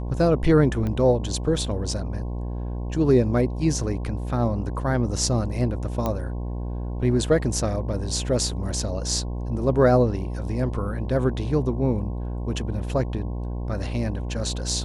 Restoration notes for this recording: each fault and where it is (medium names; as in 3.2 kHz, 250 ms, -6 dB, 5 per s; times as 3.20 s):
buzz 60 Hz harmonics 18 -29 dBFS
0.87 s: pop -18 dBFS
6.06 s: pop -12 dBFS